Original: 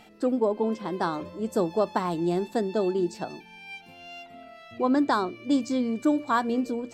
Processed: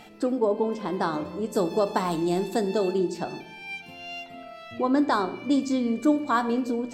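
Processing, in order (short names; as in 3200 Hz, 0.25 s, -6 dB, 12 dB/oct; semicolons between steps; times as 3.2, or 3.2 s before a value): 1.55–2.98 high shelf 4300 Hz +9 dB; in parallel at 0 dB: compressor, threshold -35 dBFS, peak gain reduction 15.5 dB; on the sum: shoebox room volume 270 m³, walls mixed, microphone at 0.34 m; gain -1.5 dB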